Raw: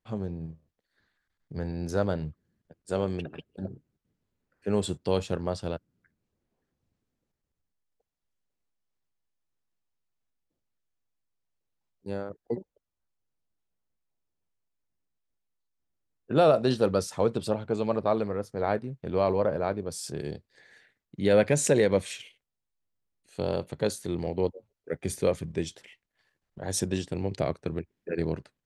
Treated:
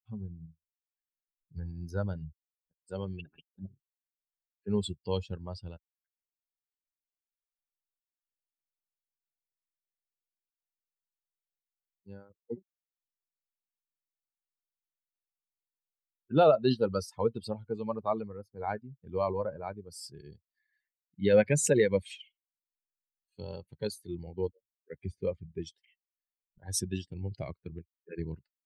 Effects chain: per-bin expansion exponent 2; 25.05–25.62 tape spacing loss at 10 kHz 31 dB; gain +1.5 dB

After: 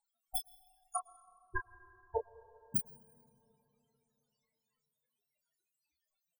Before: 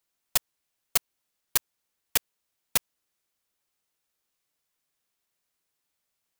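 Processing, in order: 0.96–2.76 LPF 1400 Hz 12 dB/oct; limiter -10.5 dBFS, peak gain reduction 3 dB; loudest bins only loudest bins 4; doubler 29 ms -8 dB; plate-style reverb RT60 3.4 s, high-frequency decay 0.35×, pre-delay 95 ms, DRR 18.5 dB; gain +13 dB

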